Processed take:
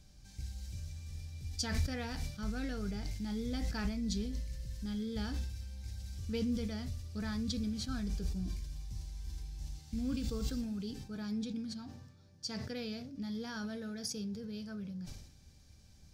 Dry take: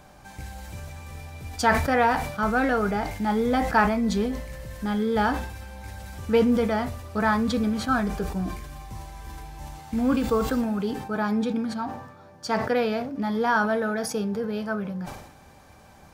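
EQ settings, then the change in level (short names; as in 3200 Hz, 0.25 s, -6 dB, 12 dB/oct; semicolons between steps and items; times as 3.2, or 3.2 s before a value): passive tone stack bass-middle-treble 10-0-1; bell 5100 Hz +13.5 dB 1.4 oct; +5.0 dB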